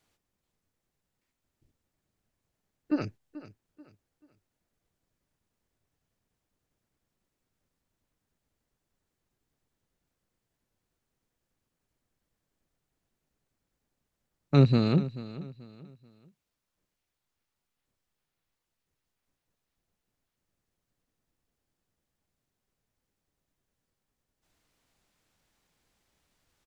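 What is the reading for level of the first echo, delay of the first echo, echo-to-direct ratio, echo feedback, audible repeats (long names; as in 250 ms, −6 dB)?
−16.0 dB, 435 ms, −15.5 dB, 33%, 2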